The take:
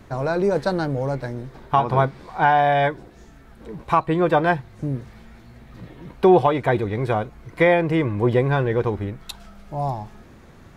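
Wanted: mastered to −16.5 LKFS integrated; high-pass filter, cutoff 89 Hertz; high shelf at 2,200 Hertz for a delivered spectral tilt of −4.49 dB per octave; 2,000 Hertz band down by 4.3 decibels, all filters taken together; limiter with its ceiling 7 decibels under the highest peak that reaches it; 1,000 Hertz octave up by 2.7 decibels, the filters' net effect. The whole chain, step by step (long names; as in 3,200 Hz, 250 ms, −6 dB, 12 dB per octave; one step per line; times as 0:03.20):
high-pass filter 89 Hz
parametric band 1,000 Hz +6 dB
parametric band 2,000 Hz −5 dB
high-shelf EQ 2,200 Hz −7 dB
level +6 dB
brickwall limiter −4 dBFS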